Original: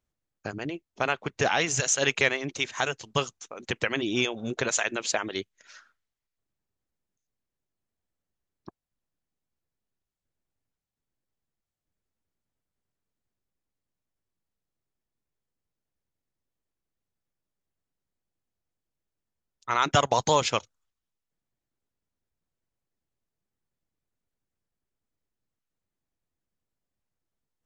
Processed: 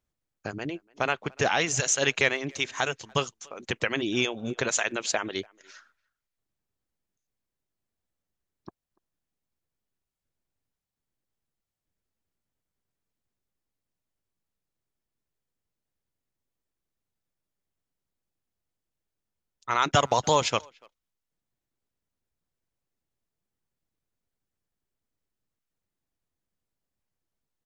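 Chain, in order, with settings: speakerphone echo 290 ms, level -27 dB

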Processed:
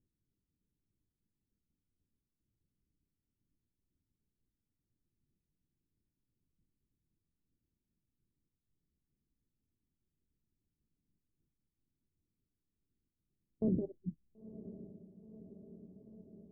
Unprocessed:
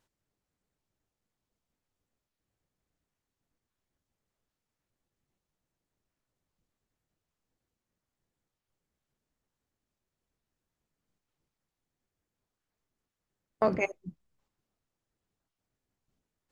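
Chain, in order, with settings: inverse Chebyshev low-pass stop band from 2 kHz, stop band 80 dB; on a send: echo that smears into a reverb 990 ms, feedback 72%, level -14 dB; on the sum: trim +2 dB

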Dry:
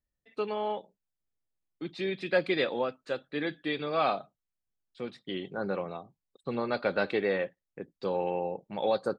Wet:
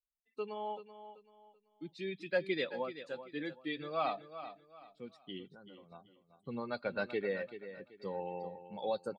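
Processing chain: expander on every frequency bin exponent 1.5; 5.49–5.92 s: compression 8:1, threshold -50 dBFS, peak gain reduction 18 dB; feedback delay 384 ms, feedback 31%, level -12 dB; trim -5 dB

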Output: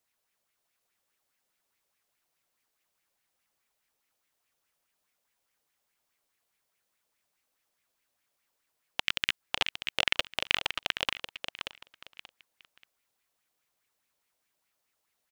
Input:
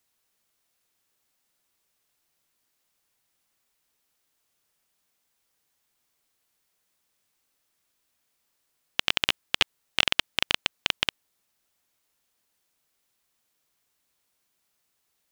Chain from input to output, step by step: 9.00–9.41 s: peaking EQ 660 Hz -10.5 dB 1.8 oct; feedback delay 582 ms, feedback 23%, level -7 dB; sweeping bell 4.8 Hz 520–2400 Hz +10 dB; trim -6.5 dB

